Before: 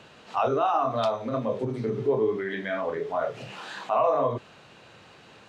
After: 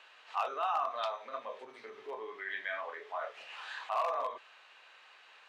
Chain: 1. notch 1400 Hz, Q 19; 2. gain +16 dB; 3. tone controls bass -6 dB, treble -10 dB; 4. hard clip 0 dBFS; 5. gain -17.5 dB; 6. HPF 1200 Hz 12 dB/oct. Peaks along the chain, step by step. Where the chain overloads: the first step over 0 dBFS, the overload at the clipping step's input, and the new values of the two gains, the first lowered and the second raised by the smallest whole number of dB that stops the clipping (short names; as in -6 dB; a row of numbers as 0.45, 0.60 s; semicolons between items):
-12.0, +4.0, +4.0, 0.0, -17.5, -21.0 dBFS; step 2, 4.0 dB; step 2 +12 dB, step 5 -13.5 dB